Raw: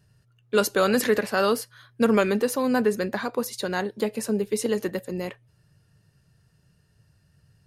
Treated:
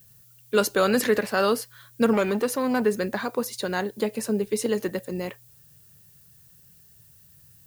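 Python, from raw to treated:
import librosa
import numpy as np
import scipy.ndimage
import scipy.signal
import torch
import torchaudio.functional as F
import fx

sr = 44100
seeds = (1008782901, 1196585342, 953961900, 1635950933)

y = fx.dmg_noise_colour(x, sr, seeds[0], colour='violet', level_db=-55.0)
y = fx.transformer_sat(y, sr, knee_hz=810.0, at=(2.13, 2.82))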